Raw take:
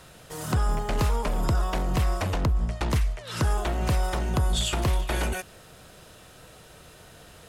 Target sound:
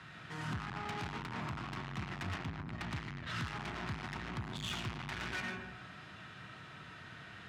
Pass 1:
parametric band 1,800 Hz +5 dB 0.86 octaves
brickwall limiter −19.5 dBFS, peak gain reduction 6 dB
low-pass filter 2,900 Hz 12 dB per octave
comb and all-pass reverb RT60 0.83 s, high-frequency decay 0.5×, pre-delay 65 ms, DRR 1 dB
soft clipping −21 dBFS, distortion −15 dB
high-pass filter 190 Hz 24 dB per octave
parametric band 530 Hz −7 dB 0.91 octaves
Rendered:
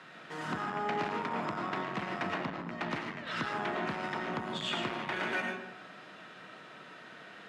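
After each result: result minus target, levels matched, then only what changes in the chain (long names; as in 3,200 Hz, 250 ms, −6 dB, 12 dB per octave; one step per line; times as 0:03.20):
125 Hz band −10.5 dB; soft clipping: distortion −9 dB; 500 Hz band +5.5 dB
change: high-pass filter 93 Hz 24 dB per octave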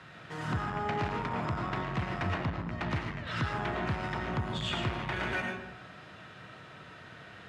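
soft clipping: distortion −9 dB; 500 Hz band +4.0 dB
change: soft clipping −32.5 dBFS, distortion −6 dB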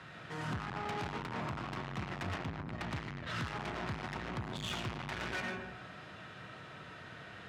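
500 Hz band +4.5 dB
change: second parametric band 530 Hz −16 dB 0.91 octaves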